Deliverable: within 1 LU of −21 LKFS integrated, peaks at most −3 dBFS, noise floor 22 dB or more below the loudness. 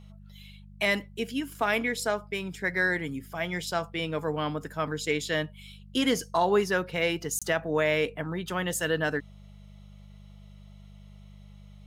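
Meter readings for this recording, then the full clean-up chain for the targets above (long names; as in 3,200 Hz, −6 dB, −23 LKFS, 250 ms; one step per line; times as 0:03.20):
number of dropouts 1; longest dropout 26 ms; mains hum 50 Hz; hum harmonics up to 200 Hz; level of the hum −46 dBFS; integrated loudness −28.5 LKFS; sample peak −12.0 dBFS; target loudness −21.0 LKFS
→ repair the gap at 0:07.39, 26 ms
hum removal 50 Hz, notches 4
level +7.5 dB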